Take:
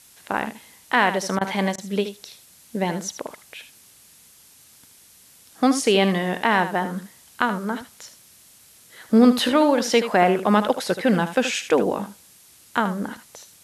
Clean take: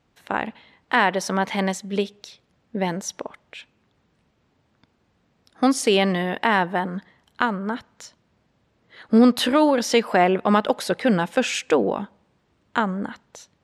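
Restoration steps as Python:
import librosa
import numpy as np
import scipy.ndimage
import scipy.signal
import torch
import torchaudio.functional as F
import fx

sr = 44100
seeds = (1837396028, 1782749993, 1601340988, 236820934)

y = fx.fix_interpolate(x, sr, at_s=(1.39, 1.76), length_ms=20.0)
y = fx.noise_reduce(y, sr, print_start_s=4.3, print_end_s=4.8, reduce_db=15.0)
y = fx.fix_echo_inverse(y, sr, delay_ms=77, level_db=-11.0)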